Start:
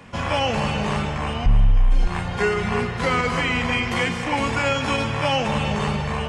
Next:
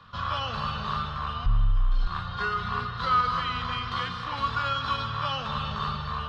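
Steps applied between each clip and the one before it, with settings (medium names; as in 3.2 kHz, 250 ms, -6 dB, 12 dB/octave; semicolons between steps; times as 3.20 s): FFT filter 120 Hz 0 dB, 300 Hz -13 dB, 500 Hz -9 dB, 860 Hz -7 dB, 1.2 kHz +12 dB, 2.2 kHz -12 dB, 3.9 kHz +10 dB, 7.6 kHz -19 dB; trim -7 dB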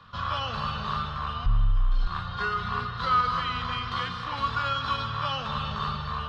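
no audible change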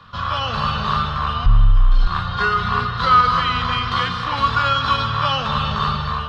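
level rider gain up to 3.5 dB; trim +6.5 dB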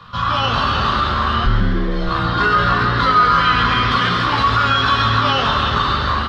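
peak limiter -12.5 dBFS, peak gain reduction 8.5 dB; doubling 17 ms -4.5 dB; frequency-shifting echo 135 ms, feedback 61%, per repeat +150 Hz, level -8.5 dB; trim +3.5 dB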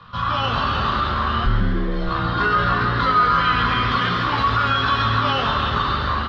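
distance through air 97 m; trim -3 dB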